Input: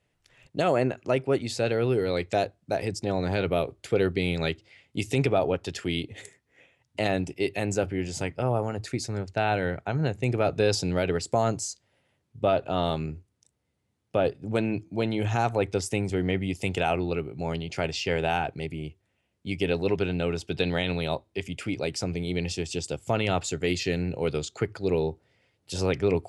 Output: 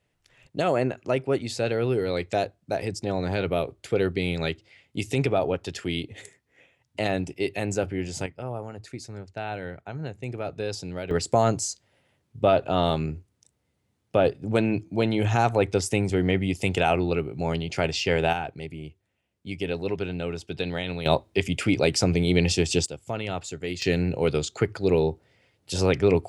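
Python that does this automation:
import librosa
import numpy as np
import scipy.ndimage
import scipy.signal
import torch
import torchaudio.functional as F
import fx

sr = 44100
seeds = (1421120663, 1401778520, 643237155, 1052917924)

y = fx.gain(x, sr, db=fx.steps((0.0, 0.0), (8.26, -7.5), (11.11, 3.5), (18.33, -3.0), (21.06, 8.0), (22.86, -5.0), (23.82, 4.0)))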